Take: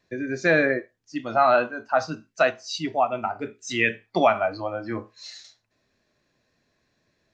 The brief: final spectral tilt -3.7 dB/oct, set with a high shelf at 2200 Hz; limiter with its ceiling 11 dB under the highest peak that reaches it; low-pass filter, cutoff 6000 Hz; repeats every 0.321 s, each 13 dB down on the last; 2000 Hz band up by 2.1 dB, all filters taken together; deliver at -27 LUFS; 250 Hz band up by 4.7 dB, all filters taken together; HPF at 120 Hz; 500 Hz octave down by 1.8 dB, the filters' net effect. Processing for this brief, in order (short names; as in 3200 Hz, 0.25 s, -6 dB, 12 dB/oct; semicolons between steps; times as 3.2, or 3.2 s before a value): HPF 120 Hz; LPF 6000 Hz; bell 250 Hz +7.5 dB; bell 500 Hz -4 dB; bell 2000 Hz +5.5 dB; high shelf 2200 Hz -5 dB; limiter -17.5 dBFS; feedback echo 0.321 s, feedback 22%, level -13 dB; gain +2 dB